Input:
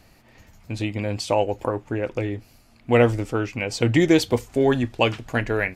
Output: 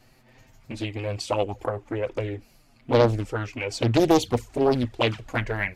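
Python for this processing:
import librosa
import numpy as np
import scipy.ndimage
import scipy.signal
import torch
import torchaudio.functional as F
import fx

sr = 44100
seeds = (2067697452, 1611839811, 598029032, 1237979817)

y = fx.env_flanger(x, sr, rest_ms=8.3, full_db=-14.0)
y = fx.doppler_dist(y, sr, depth_ms=0.73)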